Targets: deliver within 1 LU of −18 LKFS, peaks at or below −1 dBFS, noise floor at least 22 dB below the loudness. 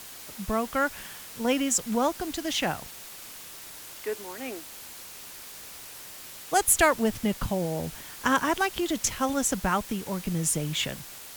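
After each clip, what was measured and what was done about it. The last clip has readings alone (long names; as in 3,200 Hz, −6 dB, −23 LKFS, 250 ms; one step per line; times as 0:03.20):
background noise floor −44 dBFS; target noise floor −49 dBFS; integrated loudness −27.0 LKFS; sample peak −9.0 dBFS; target loudness −18.0 LKFS
→ broadband denoise 6 dB, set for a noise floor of −44 dBFS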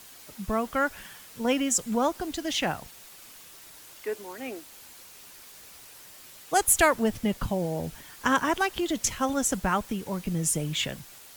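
background noise floor −49 dBFS; target noise floor −50 dBFS
→ broadband denoise 6 dB, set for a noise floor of −49 dBFS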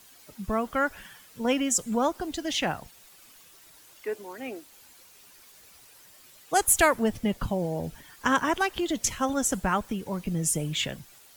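background noise floor −54 dBFS; integrated loudness −27.5 LKFS; sample peak −9.0 dBFS; target loudness −18.0 LKFS
→ level +9.5 dB
brickwall limiter −1 dBFS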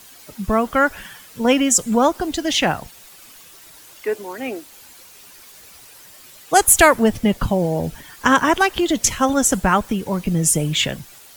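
integrated loudness −18.0 LKFS; sample peak −1.0 dBFS; background noise floor −45 dBFS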